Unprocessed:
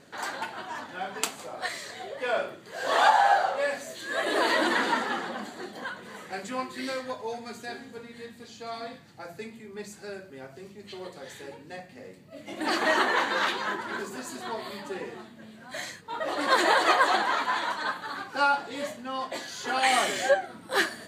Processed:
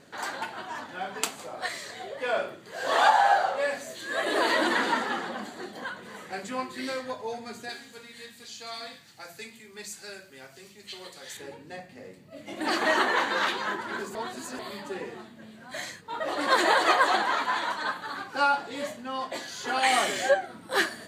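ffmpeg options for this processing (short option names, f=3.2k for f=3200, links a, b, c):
-filter_complex "[0:a]asettb=1/sr,asplit=3[a][b][c];[a]atrim=end=7.694[d];[b]atrim=start=7.69:end=11.37,asetpts=PTS-STARTPTS,afade=t=in:d=0.004:c=qsin,afade=t=out:st=3.676:d=0.004:c=qsin,tiltshelf=f=1.5k:g=-8[e];[c]atrim=start=11.366[f];[d][e]acrossfade=d=0.004:c1=hsin:c2=qsin[g];[g][f]acrossfade=d=0.004:c1=qsin:c2=hsin,asplit=3[h][i][j];[h]atrim=end=14.152[k];[i]atrim=start=14.148:end=14.592,asetpts=PTS-STARTPTS,areverse[l];[j]atrim=start=14.588[m];[k][l]acrossfade=d=0.004:c1=hsin:c2=hsin[n];[n][m]acrossfade=d=0.004:c1=hsin:c2=hsin"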